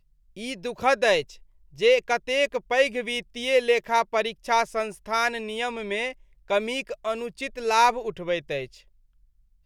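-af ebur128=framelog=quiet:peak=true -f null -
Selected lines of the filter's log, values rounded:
Integrated loudness:
  I:         -24.9 LUFS
  Threshold: -35.6 LUFS
Loudness range:
  LRA:         3.9 LU
  Threshold: -45.3 LUFS
  LRA low:   -27.4 LUFS
  LRA high:  -23.5 LUFS
True peak:
  Peak:       -7.3 dBFS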